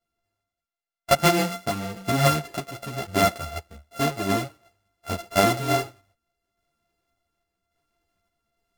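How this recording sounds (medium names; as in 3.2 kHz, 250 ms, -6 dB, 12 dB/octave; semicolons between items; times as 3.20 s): a buzz of ramps at a fixed pitch in blocks of 64 samples; random-step tremolo; a shimmering, thickened sound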